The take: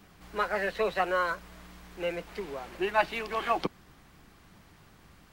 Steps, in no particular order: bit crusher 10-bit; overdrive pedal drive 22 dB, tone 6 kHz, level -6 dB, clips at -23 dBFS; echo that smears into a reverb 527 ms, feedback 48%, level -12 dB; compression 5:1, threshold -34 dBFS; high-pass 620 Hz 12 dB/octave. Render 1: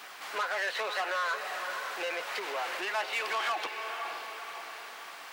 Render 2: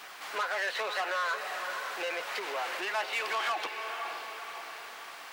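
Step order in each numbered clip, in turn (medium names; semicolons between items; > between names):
compression > echo that smears into a reverb > overdrive pedal > bit crusher > high-pass; compression > echo that smears into a reverb > overdrive pedal > high-pass > bit crusher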